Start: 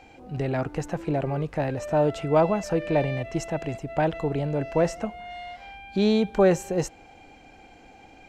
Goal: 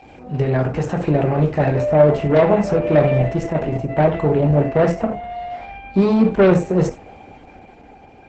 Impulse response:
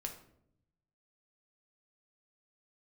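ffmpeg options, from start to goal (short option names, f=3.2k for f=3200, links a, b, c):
-filter_complex "[0:a]asetnsamples=n=441:p=0,asendcmd='1.81 lowpass f 1300',lowpass=f=3.5k:p=1,aeval=exprs='0.355*(cos(1*acos(clip(val(0)/0.355,-1,1)))-cos(1*PI/2))+0.0794*(cos(5*acos(clip(val(0)/0.355,-1,1)))-cos(5*PI/2))':c=same,highpass=f=43:w=0.5412,highpass=f=43:w=1.3066[a];[1:a]atrim=start_sample=2205,atrim=end_sample=4410[b];[a][b]afir=irnorm=-1:irlink=0,dynaudnorm=f=140:g=13:m=3.5dB,volume=3.5dB" -ar 48000 -c:a libopus -b:a 10k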